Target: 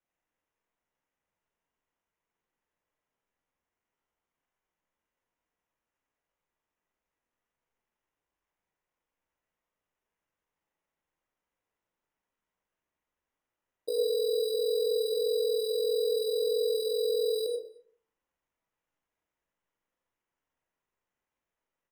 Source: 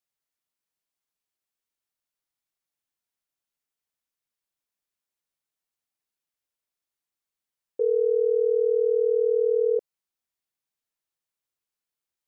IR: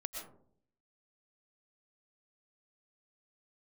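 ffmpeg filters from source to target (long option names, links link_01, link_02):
-filter_complex "[0:a]equalizer=frequency=500:width=2.8:gain=9,alimiter=limit=-20dB:level=0:latency=1:release=101,atempo=0.56,acrusher=samples=10:mix=1:aa=0.000001,asplit=2[link_01][link_02];[link_02]adelay=40,volume=-10.5dB[link_03];[link_01][link_03]amix=inputs=2:normalize=0,asplit=2[link_04][link_05];[link_05]adelay=221.6,volume=-24dB,highshelf=frequency=4000:gain=-4.99[link_06];[link_04][link_06]amix=inputs=2:normalize=0[link_07];[1:a]atrim=start_sample=2205,asetrate=66150,aresample=44100[link_08];[link_07][link_08]afir=irnorm=-1:irlink=0,volume=3dB"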